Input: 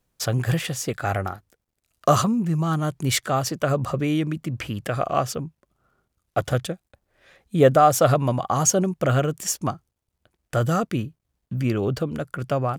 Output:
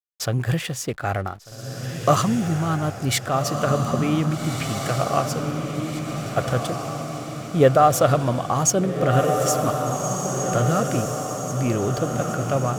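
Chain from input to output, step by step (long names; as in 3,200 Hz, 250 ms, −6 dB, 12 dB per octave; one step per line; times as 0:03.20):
slack as between gear wheels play −39.5 dBFS
feedback delay with all-pass diffusion 1,617 ms, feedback 54%, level −4.5 dB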